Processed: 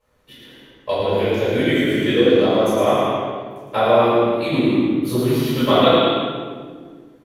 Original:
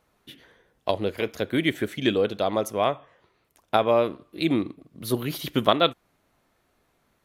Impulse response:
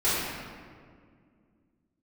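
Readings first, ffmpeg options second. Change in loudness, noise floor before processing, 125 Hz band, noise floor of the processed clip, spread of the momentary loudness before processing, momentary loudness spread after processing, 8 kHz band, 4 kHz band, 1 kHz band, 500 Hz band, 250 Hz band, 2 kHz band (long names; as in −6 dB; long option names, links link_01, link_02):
+7.5 dB, −70 dBFS, +9.0 dB, −50 dBFS, 8 LU, 13 LU, +4.0 dB, +6.0 dB, +7.0 dB, +8.5 dB, +9.0 dB, +7.0 dB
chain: -filter_complex "[0:a]aecho=1:1:110|198|268.4|324.7|369.8:0.631|0.398|0.251|0.158|0.1[link_01];[1:a]atrim=start_sample=2205,asetrate=57330,aresample=44100[link_02];[link_01][link_02]afir=irnorm=-1:irlink=0,volume=-7dB"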